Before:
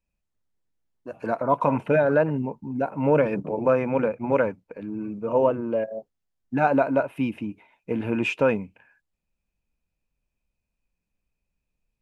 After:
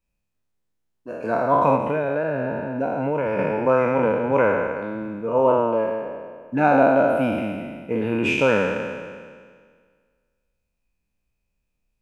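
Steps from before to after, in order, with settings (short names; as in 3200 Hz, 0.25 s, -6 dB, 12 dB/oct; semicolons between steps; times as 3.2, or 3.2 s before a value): spectral trails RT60 1.80 s; 1.75–3.39 compressor, threshold -20 dBFS, peak gain reduction 8 dB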